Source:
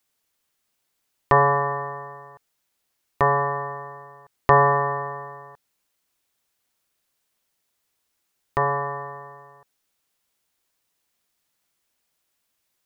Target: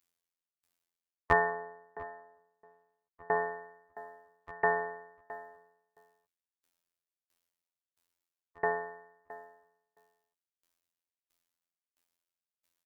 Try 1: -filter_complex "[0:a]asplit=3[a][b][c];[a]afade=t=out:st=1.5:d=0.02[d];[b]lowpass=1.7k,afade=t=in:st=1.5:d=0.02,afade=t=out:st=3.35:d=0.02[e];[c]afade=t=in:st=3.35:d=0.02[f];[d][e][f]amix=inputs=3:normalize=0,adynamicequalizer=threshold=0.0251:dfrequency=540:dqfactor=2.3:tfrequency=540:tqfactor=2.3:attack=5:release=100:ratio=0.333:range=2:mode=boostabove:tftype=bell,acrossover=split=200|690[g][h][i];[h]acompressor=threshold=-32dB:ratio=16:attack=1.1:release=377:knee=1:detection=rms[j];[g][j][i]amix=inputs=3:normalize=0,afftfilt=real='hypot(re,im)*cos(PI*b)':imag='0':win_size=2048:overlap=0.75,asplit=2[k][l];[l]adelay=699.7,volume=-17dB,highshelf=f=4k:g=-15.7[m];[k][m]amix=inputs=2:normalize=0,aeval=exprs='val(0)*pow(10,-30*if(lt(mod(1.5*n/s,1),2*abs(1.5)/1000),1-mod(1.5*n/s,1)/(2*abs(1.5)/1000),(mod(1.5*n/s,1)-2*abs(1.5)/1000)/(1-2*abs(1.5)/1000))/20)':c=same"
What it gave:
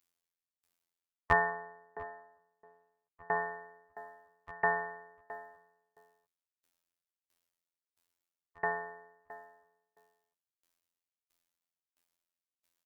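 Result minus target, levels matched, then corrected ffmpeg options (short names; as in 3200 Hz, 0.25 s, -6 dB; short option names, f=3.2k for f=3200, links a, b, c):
compressor: peak gain reduction +10 dB
-filter_complex "[0:a]asplit=3[a][b][c];[a]afade=t=out:st=1.5:d=0.02[d];[b]lowpass=1.7k,afade=t=in:st=1.5:d=0.02,afade=t=out:st=3.35:d=0.02[e];[c]afade=t=in:st=3.35:d=0.02[f];[d][e][f]amix=inputs=3:normalize=0,adynamicequalizer=threshold=0.0251:dfrequency=540:dqfactor=2.3:tfrequency=540:tqfactor=2.3:attack=5:release=100:ratio=0.333:range=2:mode=boostabove:tftype=bell,acrossover=split=200|690[g][h][i];[h]acompressor=threshold=-21.5dB:ratio=16:attack=1.1:release=377:knee=1:detection=rms[j];[g][j][i]amix=inputs=3:normalize=0,afftfilt=real='hypot(re,im)*cos(PI*b)':imag='0':win_size=2048:overlap=0.75,asplit=2[k][l];[l]adelay=699.7,volume=-17dB,highshelf=f=4k:g=-15.7[m];[k][m]amix=inputs=2:normalize=0,aeval=exprs='val(0)*pow(10,-30*if(lt(mod(1.5*n/s,1),2*abs(1.5)/1000),1-mod(1.5*n/s,1)/(2*abs(1.5)/1000),(mod(1.5*n/s,1)-2*abs(1.5)/1000)/(1-2*abs(1.5)/1000))/20)':c=same"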